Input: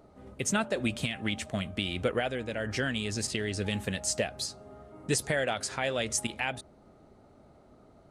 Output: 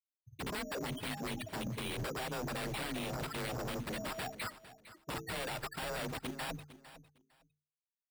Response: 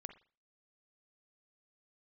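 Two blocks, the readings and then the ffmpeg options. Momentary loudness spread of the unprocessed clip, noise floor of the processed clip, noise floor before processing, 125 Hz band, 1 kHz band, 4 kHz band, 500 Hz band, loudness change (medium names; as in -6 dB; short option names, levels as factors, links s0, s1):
5 LU, under -85 dBFS, -58 dBFS, -7.0 dB, -4.0 dB, -8.0 dB, -9.5 dB, -8.5 dB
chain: -af "afftfilt=real='re*gte(hypot(re,im),0.0398)':imag='im*gte(hypot(re,im),0.0398)':win_size=1024:overlap=0.75,bandreject=f=60:t=h:w=6,bandreject=f=120:t=h:w=6,bandreject=f=180:t=h:w=6,bandreject=f=240:t=h:w=6,bandreject=f=300:t=h:w=6,bandreject=f=360:t=h:w=6,bandreject=f=420:t=h:w=6,acompressor=threshold=0.0224:ratio=12,aresample=16000,aeval=exprs='0.0106*(abs(mod(val(0)/0.0106+3,4)-2)-1)':c=same,aresample=44100,afreqshift=28,acrusher=samples=7:mix=1:aa=0.000001,aecho=1:1:455|910:0.168|0.0319,volume=1.88"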